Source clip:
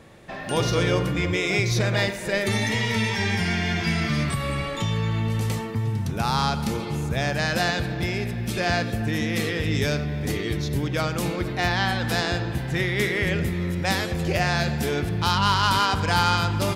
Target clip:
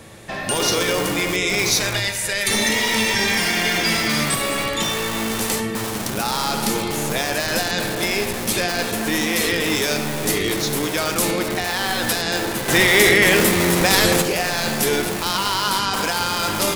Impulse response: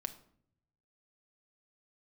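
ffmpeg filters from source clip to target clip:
-filter_complex "[0:a]asettb=1/sr,asplit=3[a][b][c];[a]atrim=end=1.694[d];[b]atrim=start=1.69:end=2.51,asetpts=PTS-STARTPTS,afade=t=in:d=0.004:c=qsin,afade=t=out:st=0.816:d=0.004:c=qsin,equalizer=f=240:t=o:w=2.8:g=-14.5[e];[c]atrim=start=2.506[f];[d][e]acrossfade=d=0.004:c1=hsin:c2=qsin[g];[g][f]acrossfade=d=0.004:c1=qsin:c2=hsin,acrossover=split=190[h][i];[h]aeval=exprs='(mod(42.2*val(0)+1,2)-1)/42.2':c=same[j];[i]alimiter=limit=-19dB:level=0:latency=1:release=26[k];[j][k]amix=inputs=2:normalize=0,crystalizer=i=2:c=0,asettb=1/sr,asplit=3[l][m][n];[l]atrim=end=12.684[o];[m]atrim=start=12.68:end=14.22,asetpts=PTS-STARTPTS,afade=t=in:d=0.004:c=qsin,afade=t=out:st=1.536:d=0.004:c=qsin,acontrast=66[p];[n]atrim=start=14.216[q];[o][p]acrossfade=d=0.004:c1=hsin:c2=qsin[r];[r][q]acrossfade=d=0.004:c1=qsin:c2=hsin,asplit=2[s][t];[1:a]atrim=start_sample=2205,asetrate=25137,aresample=44100[u];[t][u]afir=irnorm=-1:irlink=0,volume=6dB[v];[s][v]amix=inputs=2:normalize=0,volume=-4.5dB"

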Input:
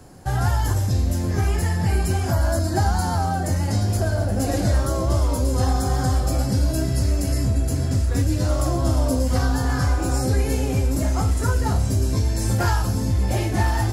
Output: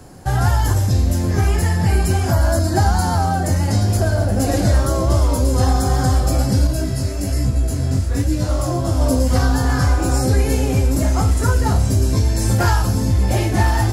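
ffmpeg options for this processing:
-filter_complex "[0:a]asettb=1/sr,asplit=3[a][b][c];[a]atrim=end=6.674[d];[b]atrim=start=6.67:end=9.01,asetpts=PTS-STARTPTS,afade=t=in:d=0.004:c=qsin,afade=t=out:st=2.336:d=0.004:c=qsin,flanger=delay=16:depth=6.9:speed=1.2[e];[c]atrim=start=9.006[f];[d][e]acrossfade=d=0.004:c1=hsin:c2=qsin[g];[g][f]acrossfade=d=0.004:c1=qsin:c2=hsin,volume=4.5dB"

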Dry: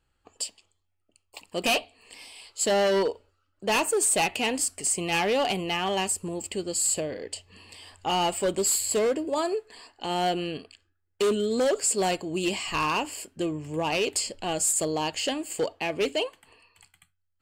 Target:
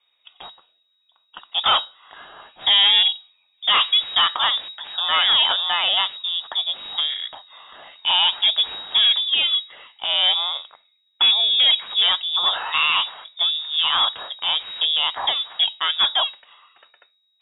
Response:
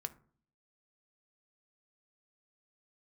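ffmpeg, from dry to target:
-af "aeval=exprs='if(lt(val(0),0),0.708*val(0),val(0))':c=same,lowpass=f=3.2k:t=q:w=0.5098,lowpass=f=3.2k:t=q:w=0.6013,lowpass=f=3.2k:t=q:w=0.9,lowpass=f=3.2k:t=q:w=2.563,afreqshift=-3800,volume=8.5dB"

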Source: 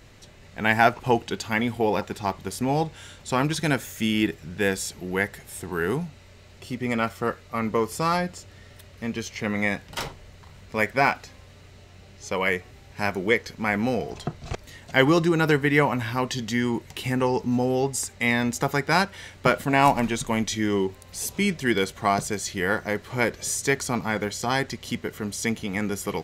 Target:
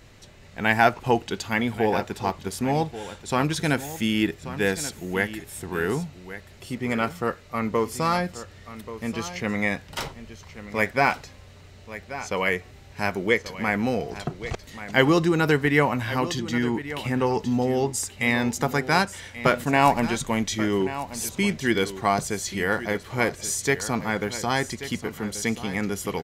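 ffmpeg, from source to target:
-filter_complex "[0:a]asettb=1/sr,asplit=3[a][b][c];[a]atrim=end=16.394[d];[b]atrim=start=16.39:end=17.27,asetpts=PTS-STARTPTS,afade=t=in:d=0.004:c=qsin,afade=t=out:st=0.876:d=0.004:c=qsin,highshelf=f=4.8k:g=-7[e];[c]atrim=start=17.266[f];[d][e]acrossfade=d=0.004:c1=hsin:c2=qsin[g];[g][f]acrossfade=d=0.004:c1=qsin:c2=hsin,aecho=1:1:1133:0.211"

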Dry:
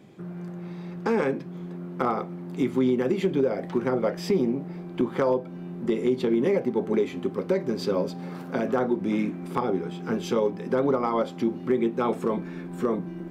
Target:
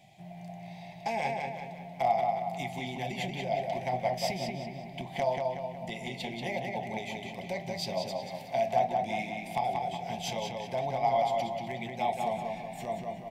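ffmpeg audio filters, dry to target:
-filter_complex "[0:a]firequalizer=gain_entry='entry(130,0);entry(280,-18);entry(470,-18);entry(690,14);entry(1300,-26);entry(2000,6)':delay=0.05:min_phase=1,asplit=2[a][b];[b]adelay=184,lowpass=f=4.6k:p=1,volume=-3dB,asplit=2[c][d];[d]adelay=184,lowpass=f=4.6k:p=1,volume=0.51,asplit=2[e][f];[f]adelay=184,lowpass=f=4.6k:p=1,volume=0.51,asplit=2[g][h];[h]adelay=184,lowpass=f=4.6k:p=1,volume=0.51,asplit=2[i][j];[j]adelay=184,lowpass=f=4.6k:p=1,volume=0.51,asplit=2[k][l];[l]adelay=184,lowpass=f=4.6k:p=1,volume=0.51,asplit=2[m][n];[n]adelay=184,lowpass=f=4.6k:p=1,volume=0.51[o];[a][c][e][g][i][k][m][o]amix=inputs=8:normalize=0,volume=-4.5dB"

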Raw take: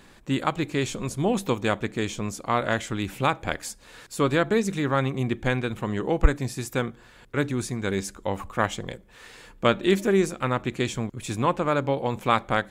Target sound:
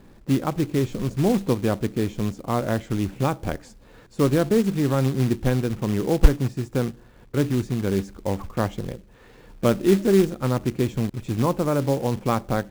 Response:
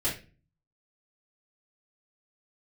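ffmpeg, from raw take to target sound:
-af "asoftclip=type=tanh:threshold=-5dB,lowpass=6.7k,tiltshelf=f=970:g=9,acrusher=bits=4:mode=log:mix=0:aa=0.000001,volume=-3dB"

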